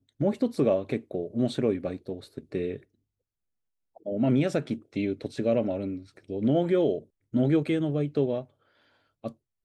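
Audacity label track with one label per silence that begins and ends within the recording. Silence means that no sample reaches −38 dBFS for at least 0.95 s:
2.770000	3.970000	silence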